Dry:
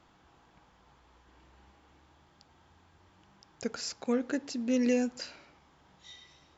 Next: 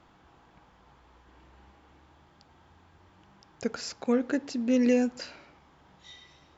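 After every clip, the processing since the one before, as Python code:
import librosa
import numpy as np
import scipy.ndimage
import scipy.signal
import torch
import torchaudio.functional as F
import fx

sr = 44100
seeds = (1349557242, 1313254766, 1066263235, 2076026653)

y = fx.high_shelf(x, sr, hz=4400.0, db=-7.5)
y = y * librosa.db_to_amplitude(4.0)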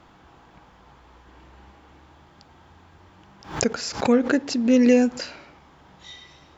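y = fx.pre_swell(x, sr, db_per_s=130.0)
y = y * librosa.db_to_amplitude(7.0)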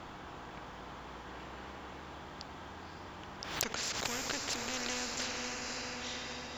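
y = fx.diode_clip(x, sr, knee_db=-6.0)
y = fx.echo_diffused(y, sr, ms=545, feedback_pct=42, wet_db=-9.5)
y = fx.spectral_comp(y, sr, ratio=4.0)
y = y * librosa.db_to_amplitude(-5.5)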